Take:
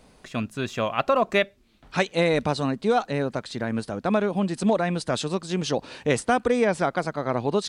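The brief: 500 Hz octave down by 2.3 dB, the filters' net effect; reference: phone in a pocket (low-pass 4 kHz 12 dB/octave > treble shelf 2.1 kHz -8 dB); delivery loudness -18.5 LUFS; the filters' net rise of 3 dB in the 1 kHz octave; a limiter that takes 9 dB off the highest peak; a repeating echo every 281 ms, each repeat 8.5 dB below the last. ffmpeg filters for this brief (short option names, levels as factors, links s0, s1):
-af "equalizer=f=500:t=o:g=-4.5,equalizer=f=1000:t=o:g=8,alimiter=limit=0.2:level=0:latency=1,lowpass=4000,highshelf=f=2100:g=-8,aecho=1:1:281|562|843|1124:0.376|0.143|0.0543|0.0206,volume=2.66"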